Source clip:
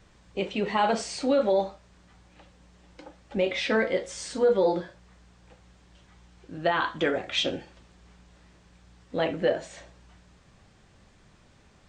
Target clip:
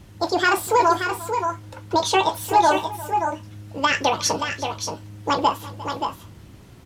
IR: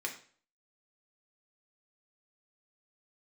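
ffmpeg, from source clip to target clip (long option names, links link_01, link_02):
-af "asetrate=76440,aresample=44100,equalizer=frequency=83:width=0.35:gain=10,aecho=1:1:352|577|596:0.119|0.447|0.119,volume=5dB"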